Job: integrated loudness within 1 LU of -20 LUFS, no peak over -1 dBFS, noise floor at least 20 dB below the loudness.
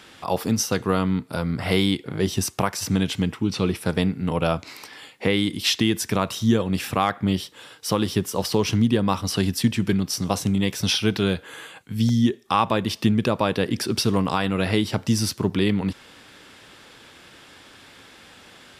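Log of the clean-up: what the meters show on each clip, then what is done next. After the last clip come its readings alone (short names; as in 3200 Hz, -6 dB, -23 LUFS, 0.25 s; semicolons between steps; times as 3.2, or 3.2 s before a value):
dropouts 1; longest dropout 1.2 ms; loudness -23.0 LUFS; peak -6.5 dBFS; loudness target -20.0 LUFS
-> interpolate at 12.09, 1.2 ms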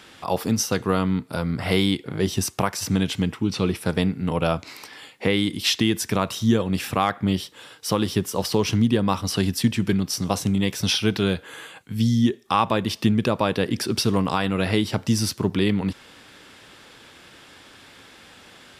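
dropouts 0; loudness -23.0 LUFS; peak -6.5 dBFS; loudness target -20.0 LUFS
-> gain +3 dB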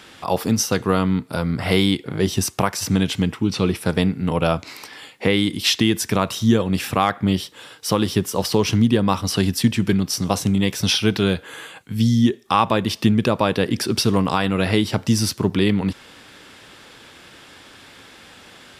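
loudness -20.0 LUFS; peak -3.5 dBFS; noise floor -46 dBFS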